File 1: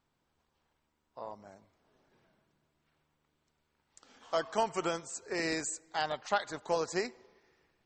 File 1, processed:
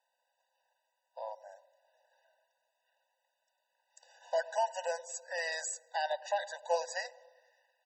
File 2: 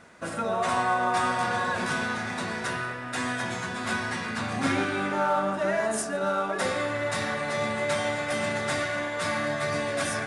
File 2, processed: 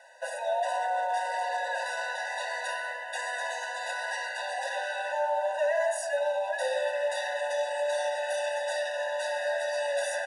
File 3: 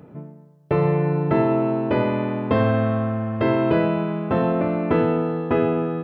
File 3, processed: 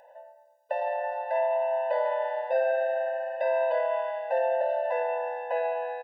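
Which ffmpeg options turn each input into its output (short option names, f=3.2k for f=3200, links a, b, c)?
-filter_complex "[0:a]acrossover=split=110|570[a][b][c];[b]aecho=1:1:102|204|306|408|510|612|714:0.282|0.166|0.0981|0.0579|0.0342|0.0201|0.0119[d];[c]alimiter=level_in=1.5dB:limit=-24dB:level=0:latency=1:release=19,volume=-1.5dB[e];[a][d][e]amix=inputs=3:normalize=0,afftfilt=real='re*eq(mod(floor(b*sr/1024/500),2),1)':imag='im*eq(mod(floor(b*sr/1024/500),2),1)':win_size=1024:overlap=0.75,volume=2.5dB"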